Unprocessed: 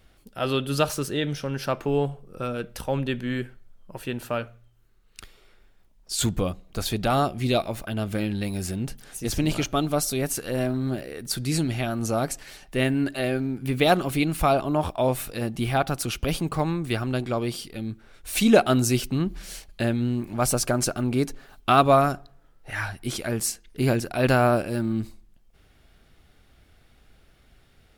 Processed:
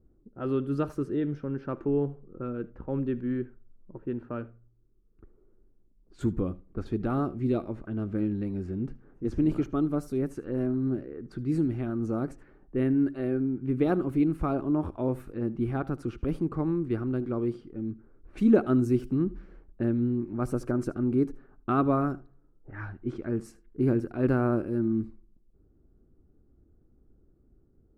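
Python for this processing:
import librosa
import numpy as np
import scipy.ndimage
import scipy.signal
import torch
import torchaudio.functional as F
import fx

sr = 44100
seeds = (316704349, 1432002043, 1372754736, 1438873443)

p1 = fx.env_lowpass(x, sr, base_hz=580.0, full_db=-21.5)
p2 = fx.curve_eq(p1, sr, hz=(170.0, 340.0, 670.0, 1300.0, 3400.0), db=(0, 7, -10, -4, -22))
p3 = p2 + fx.echo_single(p2, sr, ms=76, db=-20.5, dry=0)
y = p3 * librosa.db_to_amplitude(-4.5)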